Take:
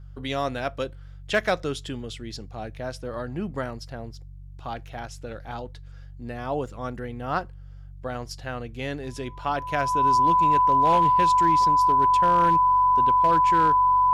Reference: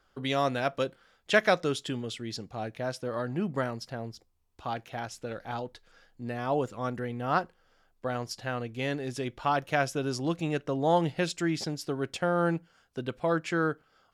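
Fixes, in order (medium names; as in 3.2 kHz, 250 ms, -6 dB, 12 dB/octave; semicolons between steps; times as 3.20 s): clip repair -13.5 dBFS; de-hum 47.5 Hz, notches 3; band-stop 1 kHz, Q 30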